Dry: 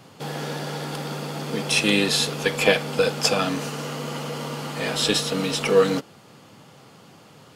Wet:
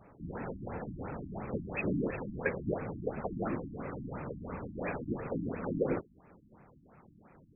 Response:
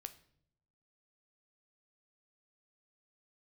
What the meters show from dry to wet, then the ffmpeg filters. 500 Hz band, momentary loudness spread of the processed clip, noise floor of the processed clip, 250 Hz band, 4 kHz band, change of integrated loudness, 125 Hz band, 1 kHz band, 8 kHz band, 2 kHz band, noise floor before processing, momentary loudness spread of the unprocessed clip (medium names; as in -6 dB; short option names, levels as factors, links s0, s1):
-13.5 dB, 8 LU, -61 dBFS, -9.5 dB, under -40 dB, -14.0 dB, -9.0 dB, -13.0 dB, under -40 dB, -16.5 dB, -50 dBFS, 12 LU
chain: -af "afftfilt=real='hypot(re,im)*cos(2*PI*random(0))':imag='hypot(re,im)*sin(2*PI*random(1))':win_size=512:overlap=0.75,afftfilt=real='re*lt(b*sr/1024,300*pow(2700/300,0.5+0.5*sin(2*PI*2.9*pts/sr)))':imag='im*lt(b*sr/1024,300*pow(2700/300,0.5+0.5*sin(2*PI*2.9*pts/sr)))':win_size=1024:overlap=0.75,volume=0.75"